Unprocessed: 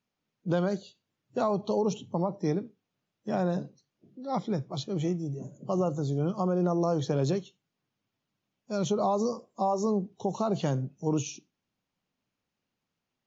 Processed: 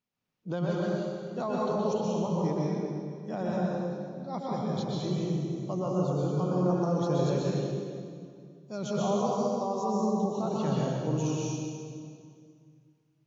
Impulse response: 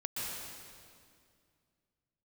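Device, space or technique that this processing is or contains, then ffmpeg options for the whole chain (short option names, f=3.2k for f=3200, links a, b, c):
stairwell: -filter_complex "[1:a]atrim=start_sample=2205[a];[0:a][a]afir=irnorm=-1:irlink=0,volume=-3dB"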